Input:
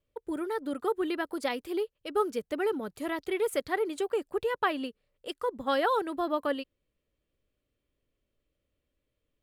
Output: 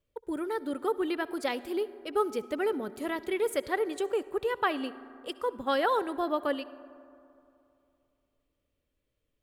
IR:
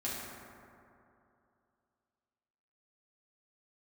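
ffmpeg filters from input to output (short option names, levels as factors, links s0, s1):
-filter_complex "[0:a]asplit=2[s0][s1];[1:a]atrim=start_sample=2205,adelay=64[s2];[s1][s2]afir=irnorm=-1:irlink=0,volume=0.0944[s3];[s0][s3]amix=inputs=2:normalize=0"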